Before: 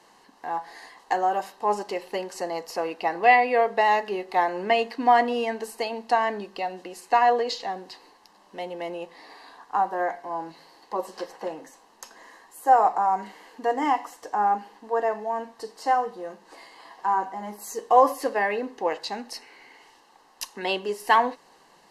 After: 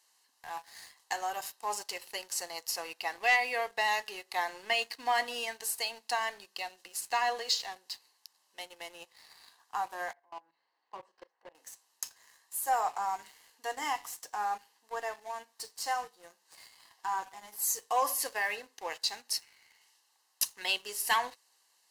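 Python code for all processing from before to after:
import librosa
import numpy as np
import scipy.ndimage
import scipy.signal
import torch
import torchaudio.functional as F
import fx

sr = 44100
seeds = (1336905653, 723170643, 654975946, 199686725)

y = fx.chain(x, sr, fx.lowpass(hz=1800.0, slope=12),
    fx.level_steps(step_db=15),
    fx.doubler(ms=36.0, db=-13), at=(10.13, 11.55))
y = np.diff(y, prepend=0.0)
y = fx.leveller(y, sr, passes=2)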